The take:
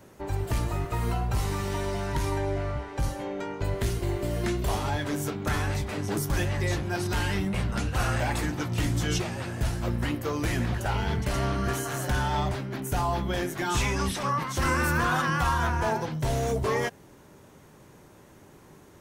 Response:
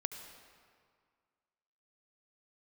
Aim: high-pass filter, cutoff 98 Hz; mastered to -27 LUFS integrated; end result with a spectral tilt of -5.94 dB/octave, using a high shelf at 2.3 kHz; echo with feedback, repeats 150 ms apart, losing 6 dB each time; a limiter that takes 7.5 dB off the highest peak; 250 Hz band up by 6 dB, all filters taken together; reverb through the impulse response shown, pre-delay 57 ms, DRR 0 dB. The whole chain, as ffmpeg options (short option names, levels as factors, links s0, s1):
-filter_complex "[0:a]highpass=98,equalizer=f=250:t=o:g=8.5,highshelf=f=2300:g=-4.5,alimiter=limit=0.1:level=0:latency=1,aecho=1:1:150|300|450|600|750|900:0.501|0.251|0.125|0.0626|0.0313|0.0157,asplit=2[s0][s1];[1:a]atrim=start_sample=2205,adelay=57[s2];[s1][s2]afir=irnorm=-1:irlink=0,volume=1[s3];[s0][s3]amix=inputs=2:normalize=0,volume=0.841"